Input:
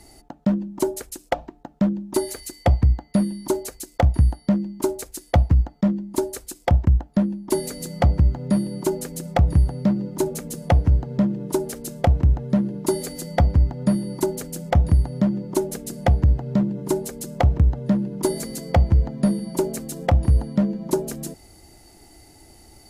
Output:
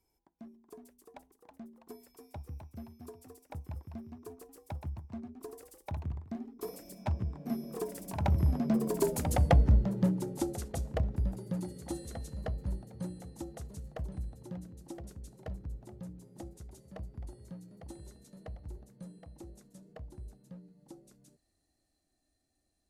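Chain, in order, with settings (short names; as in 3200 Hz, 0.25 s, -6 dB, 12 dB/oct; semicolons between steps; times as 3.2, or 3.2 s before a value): Doppler pass-by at 9.37, 41 m/s, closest 24 m; echoes that change speed 0.389 s, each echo +1 st, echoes 3, each echo -6 dB; gain -5 dB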